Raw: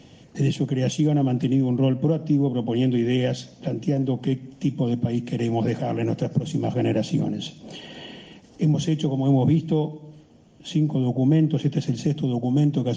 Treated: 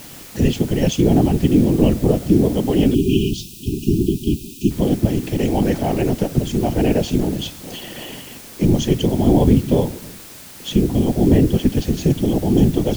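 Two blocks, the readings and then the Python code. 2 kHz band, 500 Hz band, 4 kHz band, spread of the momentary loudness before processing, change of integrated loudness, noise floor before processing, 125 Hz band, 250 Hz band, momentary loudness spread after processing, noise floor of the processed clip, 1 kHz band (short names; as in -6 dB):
+5.5 dB, +7.0 dB, +6.0 dB, 11 LU, +5.5 dB, -50 dBFS, +3.5 dB, +5.5 dB, 16 LU, -38 dBFS, +6.0 dB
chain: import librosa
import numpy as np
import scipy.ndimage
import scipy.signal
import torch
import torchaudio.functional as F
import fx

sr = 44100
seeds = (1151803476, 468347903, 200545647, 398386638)

y = fx.whisperise(x, sr, seeds[0])
y = fx.dmg_noise_colour(y, sr, seeds[1], colour='white', level_db=-45.0)
y = fx.spec_erase(y, sr, start_s=2.94, length_s=1.77, low_hz=420.0, high_hz=2400.0)
y = y * librosa.db_to_amplitude(5.5)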